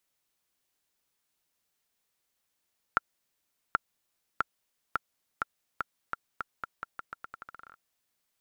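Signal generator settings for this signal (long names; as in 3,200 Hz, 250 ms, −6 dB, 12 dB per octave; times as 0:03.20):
bouncing ball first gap 0.78 s, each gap 0.84, 1,370 Hz, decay 21 ms −9 dBFS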